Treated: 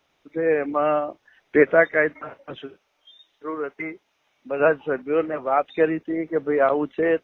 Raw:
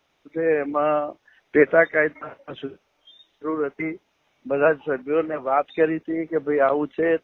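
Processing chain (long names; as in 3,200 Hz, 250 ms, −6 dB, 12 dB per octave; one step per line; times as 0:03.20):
0:02.58–0:04.60: low-shelf EQ 410 Hz −9 dB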